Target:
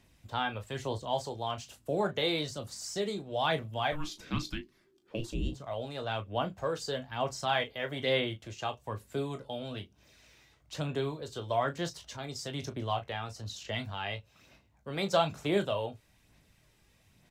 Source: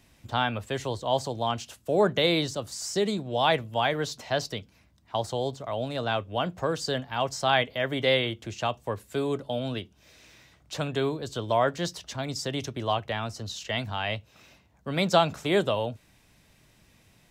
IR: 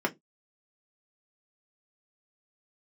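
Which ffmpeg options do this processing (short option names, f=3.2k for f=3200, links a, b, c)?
-filter_complex "[0:a]asettb=1/sr,asplit=3[a][b][c];[a]atrim=end=3.924[d];[b]atrim=start=3.92:end=5.52,asetpts=PTS-STARTPTS,afade=t=in:d=0.004:c=qsin,afade=t=out:st=1.596:d=0.004:c=qsin,afreqshift=-450[e];[c]atrim=start=5.516[f];[d][e]acrossfade=d=0.004:c1=hsin:c2=qsin[g];[g][f]acrossfade=d=0.004:c1=qsin:c2=hsin,aphaser=in_gain=1:out_gain=1:delay=2.5:decay=0.37:speed=1.1:type=sinusoidal,aecho=1:1:20|36:0.335|0.266,volume=-7.5dB"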